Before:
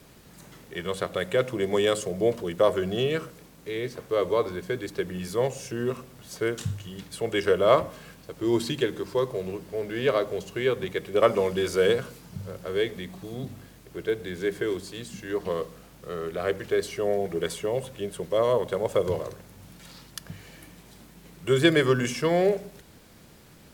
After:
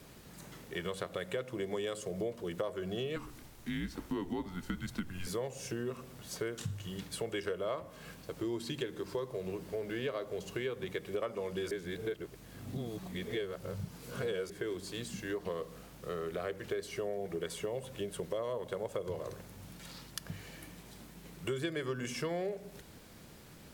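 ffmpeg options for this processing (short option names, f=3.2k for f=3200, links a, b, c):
-filter_complex "[0:a]asettb=1/sr,asplit=3[a][b][c];[a]atrim=end=3.164[d];[b]atrim=start=3.16:end=5.27,asetpts=PTS-STARTPTS,afade=t=in:d=0.004:c=qsin,afade=t=out:st=2.106:d=0.004:c=qsin,afreqshift=-180[e];[c]atrim=start=5.266[f];[d][e]acrossfade=d=0.004:c1=hsin:c2=qsin[g];[g][f]acrossfade=d=0.004:c1=qsin:c2=hsin,asplit=3[h][i][j];[h]atrim=end=11.712[k];[i]atrim=start=11.708:end=14.502,asetpts=PTS-STARTPTS,areverse[l];[j]atrim=start=14.498[m];[k][l]acrossfade=d=0.004:c1=hsin:c2=hsin[n];[n][m]acrossfade=d=0.004:c1=hsin:c2=hsin,acompressor=threshold=-32dB:ratio=6,volume=-2dB"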